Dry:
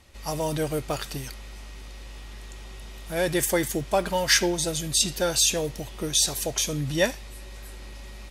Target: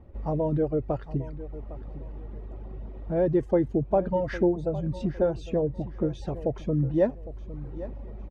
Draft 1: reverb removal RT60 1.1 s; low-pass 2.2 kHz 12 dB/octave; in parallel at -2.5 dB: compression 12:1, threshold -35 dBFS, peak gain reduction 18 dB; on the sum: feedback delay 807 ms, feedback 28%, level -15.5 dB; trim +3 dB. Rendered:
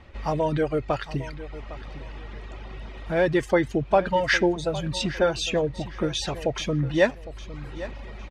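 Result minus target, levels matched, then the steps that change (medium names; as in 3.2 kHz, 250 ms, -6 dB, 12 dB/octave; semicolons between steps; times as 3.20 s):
2 kHz band +14.5 dB
change: low-pass 550 Hz 12 dB/octave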